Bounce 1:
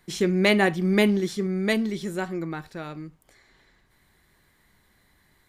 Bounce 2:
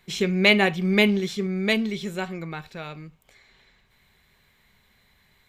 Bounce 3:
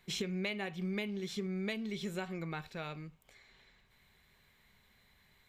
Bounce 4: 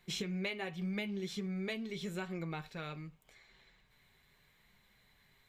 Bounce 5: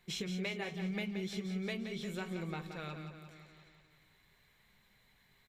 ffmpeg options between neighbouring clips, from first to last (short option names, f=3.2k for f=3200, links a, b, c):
-af "superequalizer=6b=0.398:12b=2.24:13b=1.78:16b=0.562"
-af "acompressor=threshold=-28dB:ratio=16,volume=-5.5dB"
-af "flanger=delay=5.6:depth=1.9:regen=-46:speed=0.84:shape=triangular,volume=3dB"
-af "aecho=1:1:175|350|525|700|875|1050|1225:0.376|0.222|0.131|0.0772|0.0455|0.0269|0.0159,volume=-1dB"